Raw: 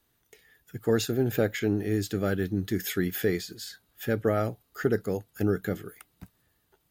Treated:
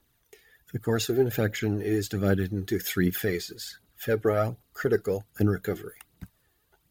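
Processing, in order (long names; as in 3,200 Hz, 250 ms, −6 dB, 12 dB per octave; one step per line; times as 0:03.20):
phase shifter 1.3 Hz, delay 2.9 ms, feedback 51%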